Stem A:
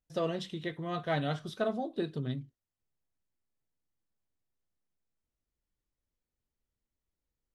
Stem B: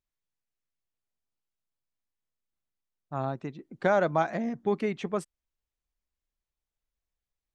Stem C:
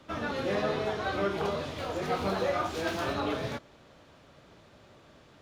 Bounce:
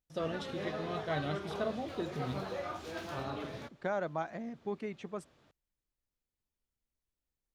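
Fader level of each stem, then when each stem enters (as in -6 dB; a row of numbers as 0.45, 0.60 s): -4.0, -10.5, -10.0 dB; 0.00, 0.00, 0.10 s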